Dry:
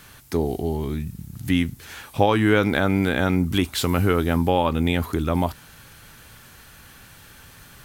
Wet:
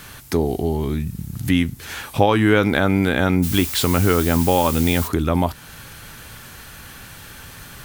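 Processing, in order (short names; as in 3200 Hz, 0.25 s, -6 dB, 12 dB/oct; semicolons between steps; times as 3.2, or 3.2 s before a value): in parallel at +1 dB: compressor, threshold -31 dBFS, peak gain reduction 17.5 dB; 3.42–5.07 on the sum: added noise blue -30 dBFS; gain +1 dB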